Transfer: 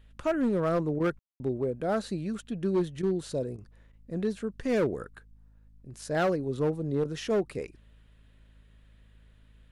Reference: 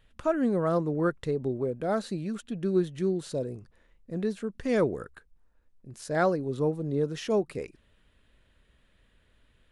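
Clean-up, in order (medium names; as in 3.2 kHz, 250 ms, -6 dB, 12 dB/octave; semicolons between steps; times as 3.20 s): clip repair -21 dBFS; de-hum 53.1 Hz, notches 5; room tone fill 1.19–1.40 s; interpolate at 0.99/3.02/3.57/3.92/7.04 s, 10 ms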